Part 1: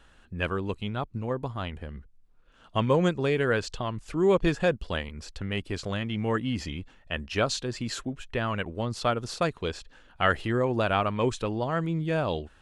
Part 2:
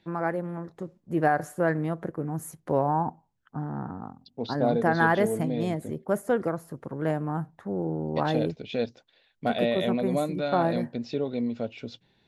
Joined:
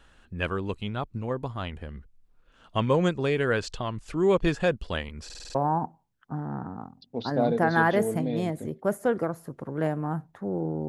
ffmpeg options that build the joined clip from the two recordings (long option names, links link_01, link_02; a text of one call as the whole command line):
ffmpeg -i cue0.wav -i cue1.wav -filter_complex "[0:a]apad=whole_dur=10.88,atrim=end=10.88,asplit=6[link_01][link_02][link_03][link_04][link_05][link_06];[link_01]atrim=end=5.302[link_07];[link_02]atrim=start=5.248:end=5.302[link_08];[link_03]atrim=start=5.248:end=5.302[link_09];[link_04]atrim=start=5.248:end=5.302[link_10];[link_05]atrim=start=5.248:end=5.302[link_11];[link_06]atrim=start=5.248:end=5.302[link_12];[1:a]atrim=start=2.788:end=8.12[link_13];[link_07][link_08]acrossfade=duration=0.004:curve1=hsin:curve2=hsin[link_14];[link_14][link_09]acrossfade=duration=0.004:curve1=hsin:curve2=hsin[link_15];[link_15][link_10]acrossfade=duration=0.004:curve1=hsin:curve2=hsin[link_16];[link_16][link_11]acrossfade=duration=0.004:curve1=hsin:curve2=hsin[link_17];[link_17][link_12]acrossfade=duration=0.004:curve1=hsin:curve2=hsin[link_18];[link_18][link_13]acrossfade=duration=0.004:curve1=hsin:curve2=hsin" out.wav